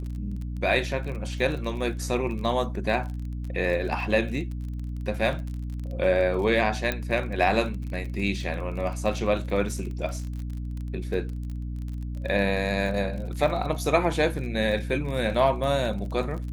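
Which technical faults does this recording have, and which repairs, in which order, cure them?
surface crackle 33 per second −33 dBFS
mains hum 60 Hz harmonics 5 −32 dBFS
0:06.92: click −12 dBFS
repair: click removal
hum removal 60 Hz, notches 5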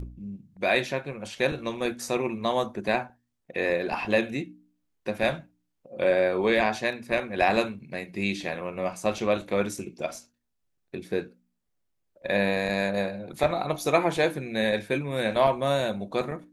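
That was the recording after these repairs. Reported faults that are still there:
0:06.92: click

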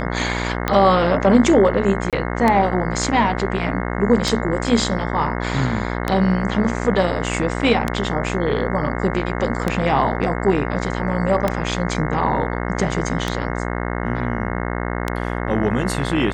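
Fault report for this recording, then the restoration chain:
mains buzz 60 Hz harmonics 36 −24 dBFS
scratch tick 33 1/3 rpm −5 dBFS
0:02.10–0:02.13: drop-out 27 ms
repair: click removal
hum removal 60 Hz, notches 36
repair the gap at 0:02.10, 27 ms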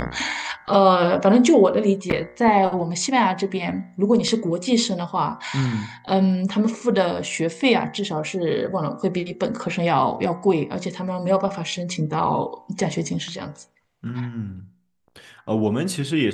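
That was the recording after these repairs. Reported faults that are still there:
none of them is left

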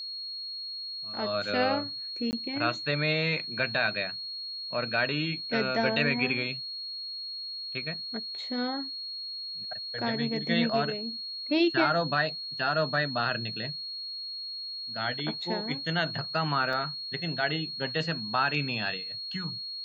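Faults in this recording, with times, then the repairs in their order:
whistle 4,300 Hz −35 dBFS
0:02.31–0:02.33: drop-out 19 ms
0:16.73: drop-out 3.4 ms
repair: notch filter 4,300 Hz, Q 30
repair the gap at 0:02.31, 19 ms
repair the gap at 0:16.73, 3.4 ms

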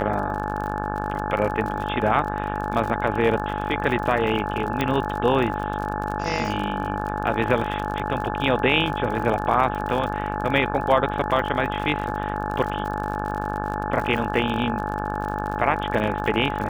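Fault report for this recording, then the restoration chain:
mains buzz 50 Hz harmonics 35 −29 dBFS
surface crackle 50 per second −29 dBFS
whistle 850 Hz −30 dBFS
0:04.81: click −10 dBFS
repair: click removal
notch filter 850 Hz, Q 30
hum removal 50 Hz, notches 35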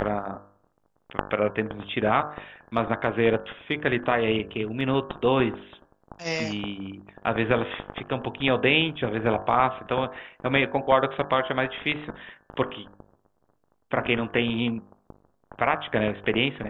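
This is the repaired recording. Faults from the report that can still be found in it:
0:04.81: click

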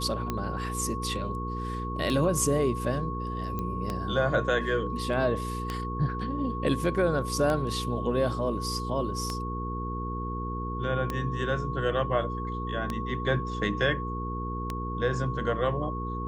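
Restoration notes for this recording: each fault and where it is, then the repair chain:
mains hum 60 Hz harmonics 8 −34 dBFS
scratch tick 33 1/3 rpm −16 dBFS
whistle 1,100 Hz −35 dBFS
0:03.59: click −20 dBFS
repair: click removal
notch filter 1,100 Hz, Q 30
hum removal 60 Hz, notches 8

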